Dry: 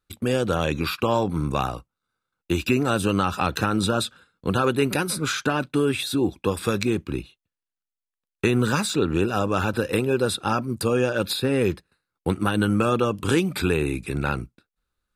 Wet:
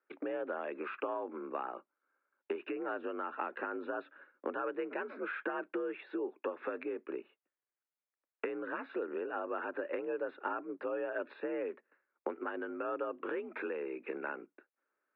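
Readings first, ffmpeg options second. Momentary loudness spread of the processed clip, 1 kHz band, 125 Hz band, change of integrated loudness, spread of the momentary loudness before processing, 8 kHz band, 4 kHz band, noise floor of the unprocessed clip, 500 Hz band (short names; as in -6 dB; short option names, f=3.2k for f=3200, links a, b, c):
5 LU, -13.5 dB, under -40 dB, -15.5 dB, 6 LU, under -40 dB, under -30 dB, under -85 dBFS, -12.5 dB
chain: -af "acompressor=threshold=-33dB:ratio=16,highpass=f=260:t=q:w=0.5412,highpass=f=260:t=q:w=1.307,lowpass=f=2.2k:t=q:w=0.5176,lowpass=f=2.2k:t=q:w=0.7071,lowpass=f=2.2k:t=q:w=1.932,afreqshift=55,volume=1.5dB"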